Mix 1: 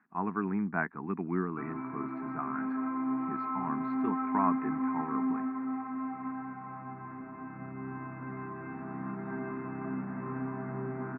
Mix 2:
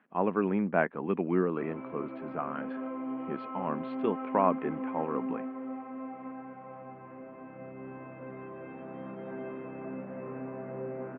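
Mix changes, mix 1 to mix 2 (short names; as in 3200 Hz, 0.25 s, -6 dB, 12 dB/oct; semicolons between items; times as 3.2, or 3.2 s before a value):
background -7.5 dB; master: remove fixed phaser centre 1300 Hz, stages 4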